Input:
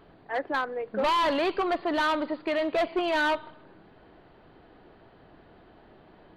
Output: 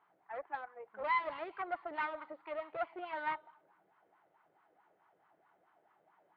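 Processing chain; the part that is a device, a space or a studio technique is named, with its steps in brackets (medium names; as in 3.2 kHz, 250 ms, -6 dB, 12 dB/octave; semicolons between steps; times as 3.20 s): FFT filter 300 Hz 0 dB, 520 Hz -10 dB, 8.4 kHz +13 dB; wah-wah guitar rig (wah-wah 4.6 Hz 530–1100 Hz, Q 5.3; valve stage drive 32 dB, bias 0.8; cabinet simulation 80–3700 Hz, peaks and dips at 170 Hz +4 dB, 250 Hz -9 dB, 830 Hz +4 dB, 1.4 kHz +6 dB, 2.1 kHz +8 dB); trim +3 dB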